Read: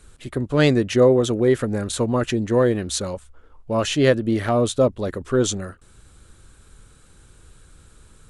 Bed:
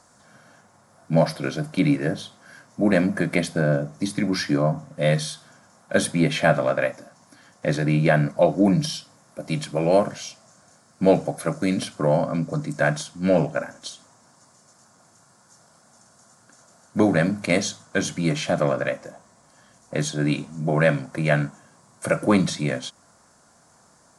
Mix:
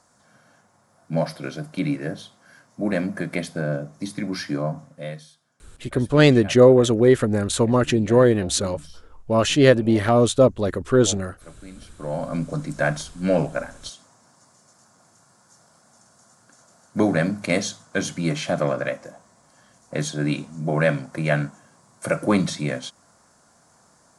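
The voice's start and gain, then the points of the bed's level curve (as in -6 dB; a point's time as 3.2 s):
5.60 s, +2.5 dB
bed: 4.85 s -4.5 dB
5.29 s -20 dB
11.76 s -20 dB
12.35 s -1 dB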